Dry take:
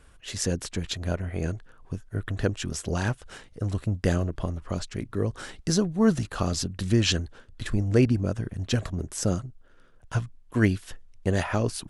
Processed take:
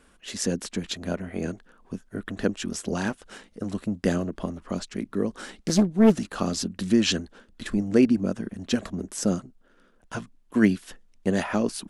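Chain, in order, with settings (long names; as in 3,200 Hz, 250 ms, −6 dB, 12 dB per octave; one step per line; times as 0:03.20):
low shelf with overshoot 160 Hz −8 dB, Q 3
0:05.58–0:06.18: highs frequency-modulated by the lows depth 0.87 ms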